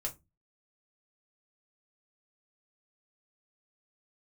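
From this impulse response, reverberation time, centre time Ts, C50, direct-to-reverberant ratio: 0.20 s, 10 ms, 17.5 dB, -0.5 dB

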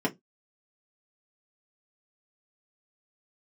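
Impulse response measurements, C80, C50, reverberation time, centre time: 32.0 dB, 23.0 dB, 0.15 s, 9 ms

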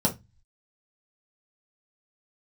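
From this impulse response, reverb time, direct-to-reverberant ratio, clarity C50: 0.20 s, -2.5 dB, 14.5 dB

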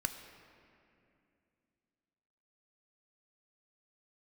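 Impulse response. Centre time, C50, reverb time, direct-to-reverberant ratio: 33 ms, 8.0 dB, 2.6 s, 6.5 dB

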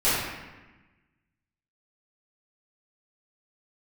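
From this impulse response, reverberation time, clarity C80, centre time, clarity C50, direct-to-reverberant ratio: 1.1 s, 1.0 dB, 93 ms, -2.0 dB, -14.0 dB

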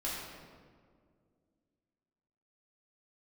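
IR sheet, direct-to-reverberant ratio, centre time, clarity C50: -8.0 dB, 98 ms, -0.5 dB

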